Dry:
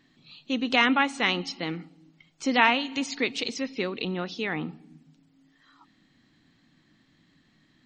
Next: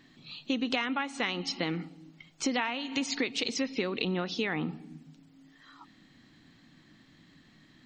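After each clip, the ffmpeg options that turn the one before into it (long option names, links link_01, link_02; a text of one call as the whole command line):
ffmpeg -i in.wav -af "acompressor=threshold=-31dB:ratio=12,volume=4.5dB" out.wav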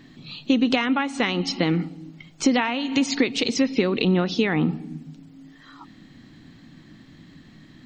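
ffmpeg -i in.wav -af "lowshelf=frequency=460:gain=7.5,volume=6dB" out.wav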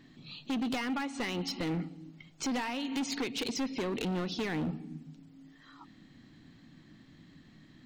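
ffmpeg -i in.wav -af "volume=21dB,asoftclip=hard,volume=-21dB,volume=-8.5dB" out.wav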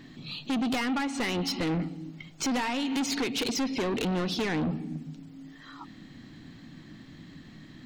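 ffmpeg -i in.wav -af "asoftclip=type=tanh:threshold=-33.5dB,volume=8.5dB" out.wav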